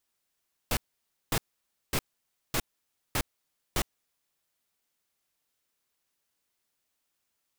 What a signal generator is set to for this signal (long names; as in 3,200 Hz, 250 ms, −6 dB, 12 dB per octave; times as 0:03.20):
noise bursts pink, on 0.06 s, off 0.55 s, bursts 6, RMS −27 dBFS